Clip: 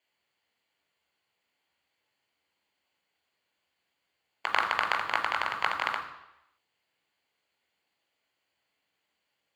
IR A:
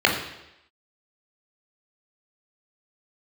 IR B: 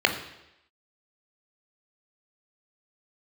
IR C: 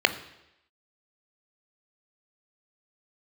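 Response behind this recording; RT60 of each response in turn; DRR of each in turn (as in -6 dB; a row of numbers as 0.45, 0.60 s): B; 0.85, 0.85, 0.85 s; -1.0, 4.0, 9.5 dB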